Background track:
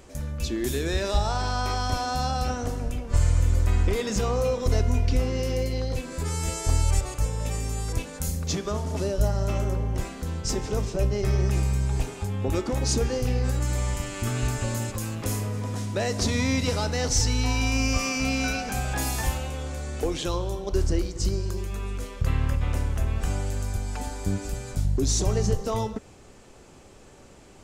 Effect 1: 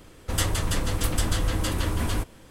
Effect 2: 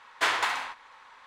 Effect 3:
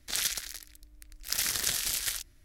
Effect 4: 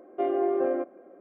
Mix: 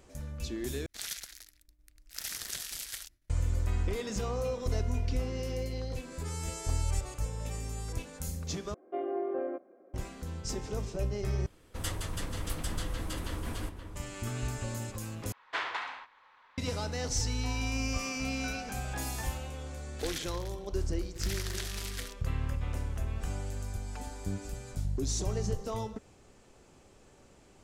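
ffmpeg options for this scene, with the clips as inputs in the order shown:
-filter_complex "[3:a]asplit=2[s0][s1];[0:a]volume=0.376[s2];[s0]agate=range=0.0224:threshold=0.00224:ratio=3:release=100:detection=peak[s3];[1:a]asplit=2[s4][s5];[s5]adelay=524.8,volume=0.398,highshelf=f=4000:g=-11.8[s6];[s4][s6]amix=inputs=2:normalize=0[s7];[2:a]lowpass=4300[s8];[s1]highshelf=f=5800:g=-11.5[s9];[s2]asplit=5[s10][s11][s12][s13][s14];[s10]atrim=end=0.864[s15];[s3]atrim=end=2.44,asetpts=PTS-STARTPTS,volume=0.355[s16];[s11]atrim=start=3.296:end=8.744[s17];[4:a]atrim=end=1.2,asetpts=PTS-STARTPTS,volume=0.398[s18];[s12]atrim=start=9.936:end=11.464[s19];[s7]atrim=end=2.5,asetpts=PTS-STARTPTS,volume=0.299[s20];[s13]atrim=start=13.956:end=15.324[s21];[s8]atrim=end=1.26,asetpts=PTS-STARTPTS,volume=0.376[s22];[s14]atrim=start=16.576[s23];[s9]atrim=end=2.44,asetpts=PTS-STARTPTS,volume=0.562,afade=t=in:d=0.004:c=hsin,afade=t=out:st=2.436:d=0.004:c=hsin,adelay=19910[s24];[s15][s16]acrossfade=d=0.004:c1=hsin:c2=hsin[s25];[s25][s17]acrossfade=d=0.004:c1=hsin:c2=hsin[s26];[s26][s18]acrossfade=d=0.004:c1=hsin:c2=hsin[s27];[s27][s19]acrossfade=d=0.004:c1=hsin:c2=hsin[s28];[s28][s20]acrossfade=d=0.004:c1=hsin:c2=hsin[s29];[s29][s21]acrossfade=d=0.004:c1=hsin:c2=hsin[s30];[s30][s22]acrossfade=d=0.004:c1=hsin:c2=hsin[s31];[s31][s23]acrossfade=d=0.004:c1=hsin:c2=hsin[s32];[s32][s24]amix=inputs=2:normalize=0"

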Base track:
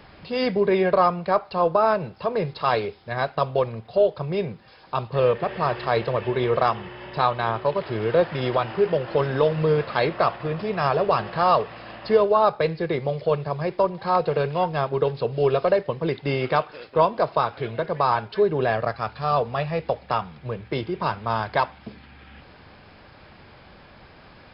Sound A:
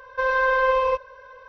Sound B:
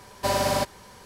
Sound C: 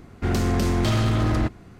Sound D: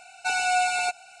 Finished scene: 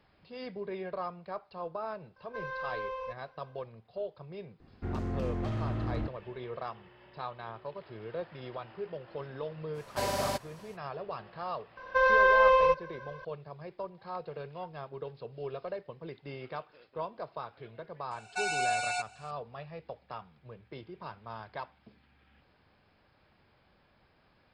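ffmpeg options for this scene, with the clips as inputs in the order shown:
-filter_complex "[1:a]asplit=2[s0][s1];[0:a]volume=0.119[s2];[3:a]lowpass=f=1100:p=1[s3];[4:a]lowpass=f=10000:w=0.5412,lowpass=f=10000:w=1.3066[s4];[s0]atrim=end=1.48,asetpts=PTS-STARTPTS,volume=0.133,afade=t=in:d=0.004:c=hsin,afade=t=out:st=1.476:d=0.004:c=hsin,adelay=2160[s5];[s3]atrim=end=1.79,asetpts=PTS-STARTPTS,volume=0.251,afade=t=in:d=0.004:c=hsin,afade=t=out:st=1.786:d=0.004:c=hsin,adelay=4600[s6];[2:a]atrim=end=1.05,asetpts=PTS-STARTPTS,volume=0.398,afade=t=in:d=0.05,afade=t=out:st=1:d=0.05,adelay=9730[s7];[s1]atrim=end=1.48,asetpts=PTS-STARTPTS,volume=0.841,afade=t=in:d=0.004:c=hsin,afade=t=out:st=1.476:d=0.004:c=hsin,adelay=11770[s8];[s4]atrim=end=1.2,asetpts=PTS-STARTPTS,volume=0.447,afade=t=in:d=0.004:c=hsin,afade=t=out:st=1.196:d=0.004:c=hsin,adelay=18110[s9];[s2][s5][s6][s7][s8][s9]amix=inputs=6:normalize=0"

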